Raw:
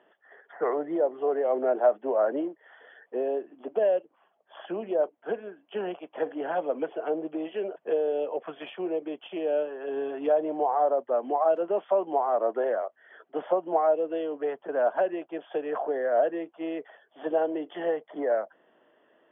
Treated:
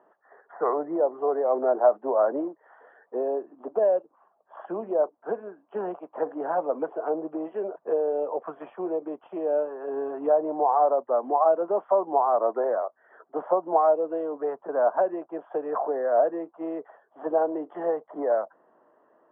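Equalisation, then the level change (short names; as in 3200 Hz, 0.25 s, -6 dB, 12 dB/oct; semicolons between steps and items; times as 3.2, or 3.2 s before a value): synth low-pass 1100 Hz, resonance Q 2.3; air absorption 190 m; 0.0 dB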